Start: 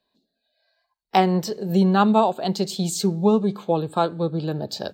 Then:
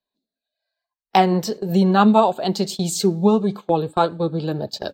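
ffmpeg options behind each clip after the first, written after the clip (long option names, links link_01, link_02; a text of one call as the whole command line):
ffmpeg -i in.wav -af "agate=range=-15dB:threshold=-30dB:ratio=16:detection=peak,flanger=delay=0.9:depth=3.8:regen=64:speed=1.7:shape=triangular,volume=7dB" out.wav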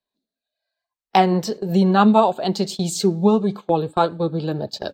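ffmpeg -i in.wav -af "highshelf=frequency=11000:gain=-7" out.wav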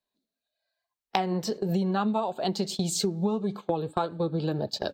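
ffmpeg -i in.wav -af "acompressor=threshold=-23dB:ratio=6,volume=-1dB" out.wav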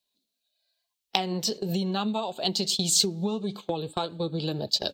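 ffmpeg -i in.wav -filter_complex "[0:a]highshelf=frequency=2300:width_type=q:width=1.5:gain=9,asplit=2[link_01][link_02];[link_02]asoftclip=type=tanh:threshold=-12.5dB,volume=-10dB[link_03];[link_01][link_03]amix=inputs=2:normalize=0,volume=-4dB" out.wav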